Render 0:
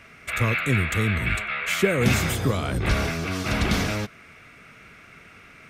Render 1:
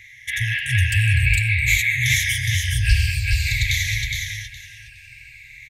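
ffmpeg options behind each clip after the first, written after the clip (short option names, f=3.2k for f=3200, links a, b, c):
-af "afftfilt=real='re*pow(10,14/40*sin(2*PI*(1.2*log(max(b,1)*sr/1024/100)/log(2)-(-0.53)*(pts-256)/sr)))':imag='im*pow(10,14/40*sin(2*PI*(1.2*log(max(b,1)*sr/1024/100)/log(2)-(-0.53)*(pts-256)/sr)))':win_size=1024:overlap=0.75,afftfilt=real='re*(1-between(b*sr/4096,130,1600))':imag='im*(1-between(b*sr/4096,130,1600))':win_size=4096:overlap=0.75,aecho=1:1:415|830|1245:0.631|0.126|0.0252,volume=3dB"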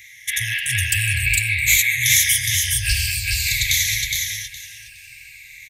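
-af "crystalizer=i=6.5:c=0,volume=-7dB"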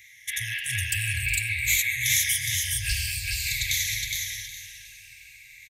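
-af "aecho=1:1:363|726|1089|1452:0.211|0.0824|0.0321|0.0125,volume=-7.5dB"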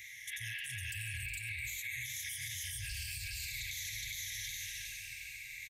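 -af "acompressor=threshold=-33dB:ratio=6,alimiter=level_in=9.5dB:limit=-24dB:level=0:latency=1:release=75,volume=-9.5dB,volume=1.5dB"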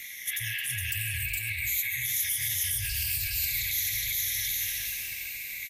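-filter_complex "[0:a]acrossover=split=1600[a][b];[a]aeval=exprs='val(0)*gte(abs(val(0)),0.00133)':c=same[c];[c][b]amix=inputs=2:normalize=0,aexciter=amount=3.8:drive=5.4:freq=11k,volume=8dB" -ar 44100 -c:a libvorbis -b:a 48k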